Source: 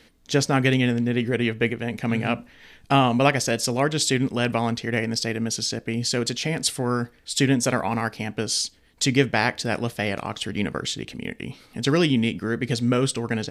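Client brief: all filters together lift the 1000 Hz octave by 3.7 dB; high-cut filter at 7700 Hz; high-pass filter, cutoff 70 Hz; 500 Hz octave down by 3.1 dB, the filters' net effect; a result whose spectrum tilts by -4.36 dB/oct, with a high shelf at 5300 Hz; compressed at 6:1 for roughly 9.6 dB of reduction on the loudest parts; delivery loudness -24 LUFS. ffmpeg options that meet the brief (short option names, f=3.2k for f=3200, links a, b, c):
-af "highpass=70,lowpass=7.7k,equalizer=f=500:t=o:g=-6,equalizer=f=1k:t=o:g=7.5,highshelf=f=5.3k:g=-4.5,acompressor=threshold=-22dB:ratio=6,volume=4dB"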